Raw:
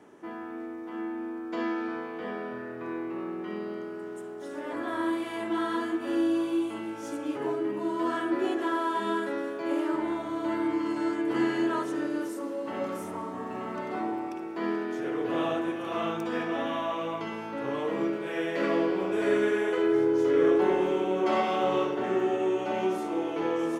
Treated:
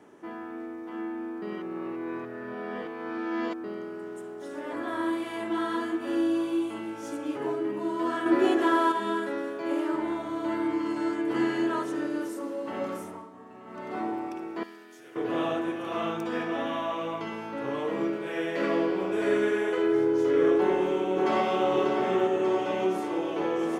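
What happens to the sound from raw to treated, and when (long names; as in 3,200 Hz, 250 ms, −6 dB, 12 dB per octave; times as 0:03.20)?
0:01.42–0:03.64: reverse
0:08.26–0:08.92: clip gain +5.5 dB
0:12.93–0:14.00: duck −12 dB, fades 0.36 s
0:14.63–0:15.16: first-order pre-emphasis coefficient 0.9
0:20.57–0:21.68: delay throw 590 ms, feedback 70%, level −6 dB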